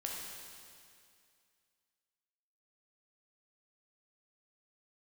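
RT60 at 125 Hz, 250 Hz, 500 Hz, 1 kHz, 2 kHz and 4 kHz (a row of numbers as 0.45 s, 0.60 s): 2.3 s, 2.3 s, 2.3 s, 2.3 s, 2.3 s, 2.3 s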